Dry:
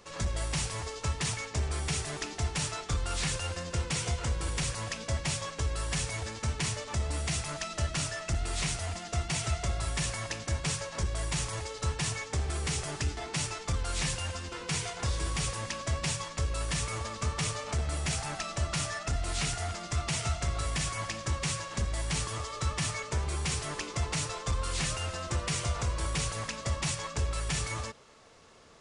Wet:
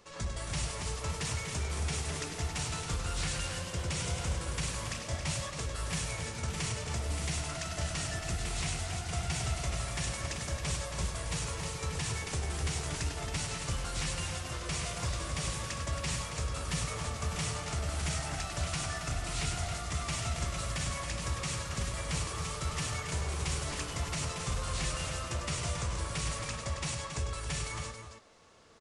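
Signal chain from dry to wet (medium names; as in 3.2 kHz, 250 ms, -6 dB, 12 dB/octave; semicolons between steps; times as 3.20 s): ever faster or slower copies 310 ms, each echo +1 st, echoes 3, each echo -6 dB; loudspeakers at several distances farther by 34 m -8 dB, 94 m -8 dB; trim -4.5 dB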